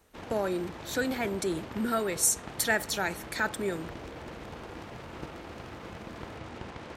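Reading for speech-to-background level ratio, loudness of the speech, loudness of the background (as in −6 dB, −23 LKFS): 13.0 dB, −30.0 LKFS, −43.0 LKFS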